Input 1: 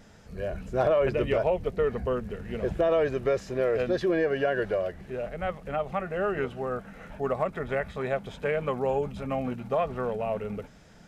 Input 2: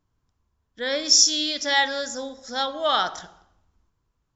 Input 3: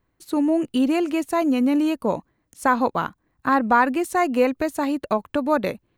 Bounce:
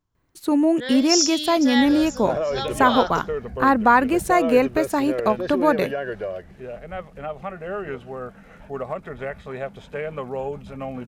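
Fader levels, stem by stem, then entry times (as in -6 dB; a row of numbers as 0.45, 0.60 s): -1.5, -4.0, +2.0 dB; 1.50, 0.00, 0.15 s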